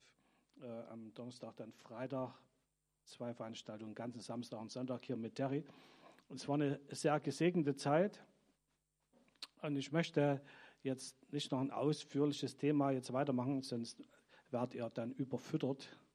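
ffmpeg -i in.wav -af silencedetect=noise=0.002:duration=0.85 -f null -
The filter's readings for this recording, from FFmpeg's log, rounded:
silence_start: 8.23
silence_end: 9.42 | silence_duration: 1.20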